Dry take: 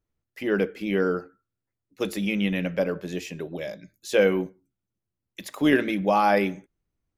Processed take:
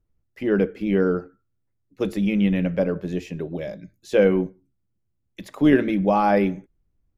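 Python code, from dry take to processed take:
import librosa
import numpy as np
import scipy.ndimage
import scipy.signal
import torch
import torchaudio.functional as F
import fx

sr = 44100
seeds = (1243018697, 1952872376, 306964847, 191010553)

y = fx.tilt_eq(x, sr, slope=-2.5)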